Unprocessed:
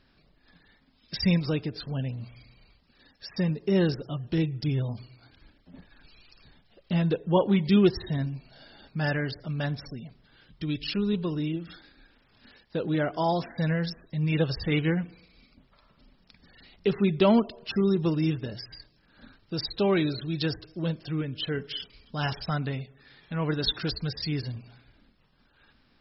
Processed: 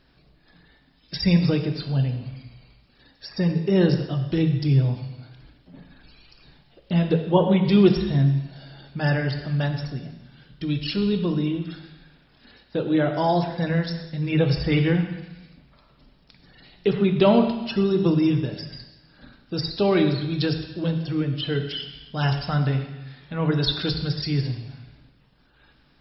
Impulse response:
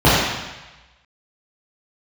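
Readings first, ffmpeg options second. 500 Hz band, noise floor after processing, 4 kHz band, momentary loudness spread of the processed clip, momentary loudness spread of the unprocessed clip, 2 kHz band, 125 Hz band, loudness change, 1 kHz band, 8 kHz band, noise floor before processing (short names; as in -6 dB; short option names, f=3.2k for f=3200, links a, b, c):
+5.0 dB, -59 dBFS, +4.0 dB, 16 LU, 14 LU, +3.0 dB, +6.5 dB, +5.0 dB, +4.5 dB, n/a, -65 dBFS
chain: -filter_complex "[0:a]asplit=2[a][b];[1:a]atrim=start_sample=2205,highshelf=f=2.8k:g=9[c];[b][c]afir=irnorm=-1:irlink=0,volume=-35.5dB[d];[a][d]amix=inputs=2:normalize=0,volume=2.5dB"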